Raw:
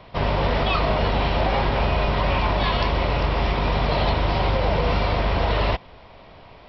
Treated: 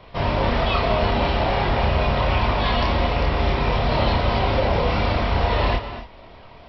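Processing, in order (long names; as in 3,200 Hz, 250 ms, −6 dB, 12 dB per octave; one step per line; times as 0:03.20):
multi-voice chorus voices 4, 0.3 Hz, delay 28 ms, depth 2.3 ms
reverb whose tail is shaped and stops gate 290 ms rising, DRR 10 dB
level +3.5 dB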